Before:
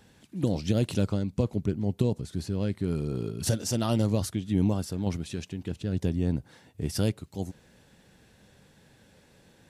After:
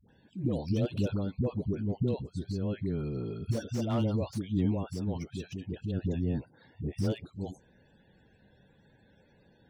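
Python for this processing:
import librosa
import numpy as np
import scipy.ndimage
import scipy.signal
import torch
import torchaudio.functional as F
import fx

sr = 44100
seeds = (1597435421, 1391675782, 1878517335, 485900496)

y = fx.spec_topn(x, sr, count=64)
y = fx.dispersion(y, sr, late='highs', ms=90.0, hz=470.0)
y = fx.slew_limit(y, sr, full_power_hz=43.0)
y = y * librosa.db_to_amplitude(-3.5)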